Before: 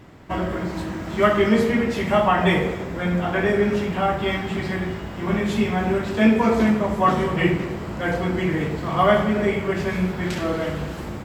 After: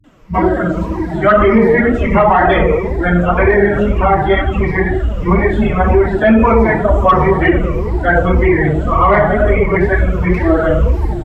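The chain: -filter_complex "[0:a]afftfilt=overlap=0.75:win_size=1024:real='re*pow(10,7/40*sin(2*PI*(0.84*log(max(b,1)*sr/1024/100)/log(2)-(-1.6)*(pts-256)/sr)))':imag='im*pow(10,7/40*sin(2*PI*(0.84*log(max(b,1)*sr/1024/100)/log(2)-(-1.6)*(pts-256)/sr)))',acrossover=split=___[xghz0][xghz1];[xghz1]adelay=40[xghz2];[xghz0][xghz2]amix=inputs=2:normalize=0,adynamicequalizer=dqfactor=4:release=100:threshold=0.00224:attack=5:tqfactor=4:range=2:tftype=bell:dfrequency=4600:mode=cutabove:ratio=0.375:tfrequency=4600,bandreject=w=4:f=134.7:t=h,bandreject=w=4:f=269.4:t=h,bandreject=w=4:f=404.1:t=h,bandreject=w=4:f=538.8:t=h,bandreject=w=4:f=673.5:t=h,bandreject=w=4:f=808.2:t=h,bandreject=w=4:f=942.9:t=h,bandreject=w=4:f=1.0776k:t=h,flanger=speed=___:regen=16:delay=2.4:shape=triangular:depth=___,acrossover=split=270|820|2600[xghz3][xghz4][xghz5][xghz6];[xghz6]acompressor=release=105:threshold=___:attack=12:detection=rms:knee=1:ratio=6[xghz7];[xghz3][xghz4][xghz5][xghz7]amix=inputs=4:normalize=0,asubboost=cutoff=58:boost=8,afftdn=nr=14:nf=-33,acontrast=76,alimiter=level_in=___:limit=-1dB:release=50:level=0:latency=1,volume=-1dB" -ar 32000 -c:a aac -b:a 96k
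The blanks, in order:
200, 2, 4.4, -50dB, 10.5dB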